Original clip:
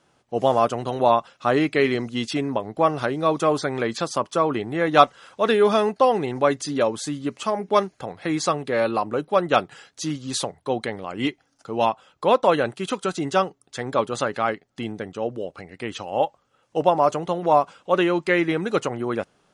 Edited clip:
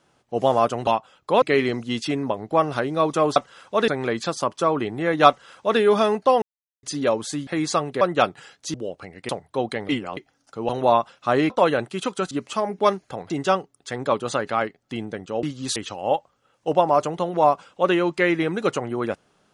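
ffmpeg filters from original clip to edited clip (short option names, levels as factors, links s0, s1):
-filter_complex "[0:a]asplit=19[s0][s1][s2][s3][s4][s5][s6][s7][s8][s9][s10][s11][s12][s13][s14][s15][s16][s17][s18];[s0]atrim=end=0.872[s19];[s1]atrim=start=11.808:end=12.362[s20];[s2]atrim=start=1.678:end=3.622[s21];[s3]atrim=start=5.018:end=5.542[s22];[s4]atrim=start=3.618:end=6.16,asetpts=PTS-STARTPTS,afade=t=out:st=2.538:d=0.004:c=hsin[s23];[s5]atrim=start=6.16:end=6.57,asetpts=PTS-STARTPTS,volume=0[s24];[s6]atrim=start=6.57:end=7.212,asetpts=PTS-STARTPTS,afade=t=in:d=0.004:c=hsin[s25];[s7]atrim=start=8.198:end=8.742[s26];[s8]atrim=start=9.348:end=10.082[s27];[s9]atrim=start=15.298:end=15.852[s28];[s10]atrim=start=10.408:end=11.012[s29];[s11]atrim=start=11.008:end=11.292,asetpts=PTS-STARTPTS,areverse[s30];[s12]atrim=start=11.288:end=11.812[s31];[s13]atrim=start=0.868:end=1.682[s32];[s14]atrim=start=12.358:end=13.172[s33];[s15]atrim=start=7.208:end=8.202[s34];[s16]atrim=start=13.168:end=15.302[s35];[s17]atrim=start=10.078:end=10.412[s36];[s18]atrim=start=15.848[s37];[s19][s20]acrossfade=d=0.004:c1=hsin:c2=hsin[s38];[s38][s21]acrossfade=d=0.004:c1=hsin:c2=hsin[s39];[s39][s22]acrossfade=d=0.004:c1=hsin:c2=hsin[s40];[s23][s24][s25]concat=n=3:v=0:a=1[s41];[s40][s41]acrossfade=d=0.004:c1=hsin:c2=hsin[s42];[s42][s26]acrossfade=d=0.004:c1=hsin:c2=hsin[s43];[s43][s27]acrossfade=d=0.004:c1=hsin:c2=hsin[s44];[s44][s28]acrossfade=d=0.004:c1=hsin:c2=hsin[s45];[s45][s29]acrossfade=d=0.004:c1=hsin:c2=hsin[s46];[s46][s30]acrossfade=d=0.004:c1=hsin:c2=hsin[s47];[s47][s31]acrossfade=d=0.004:c1=hsin:c2=hsin[s48];[s48][s32]acrossfade=d=0.004:c1=hsin:c2=hsin[s49];[s49][s33]acrossfade=d=0.004:c1=hsin:c2=hsin[s50];[s50][s34]acrossfade=d=0.004:c1=hsin:c2=hsin[s51];[s51][s35]acrossfade=d=0.004:c1=hsin:c2=hsin[s52];[s52][s36]acrossfade=d=0.004:c1=hsin:c2=hsin[s53];[s53][s37]acrossfade=d=0.004:c1=hsin:c2=hsin"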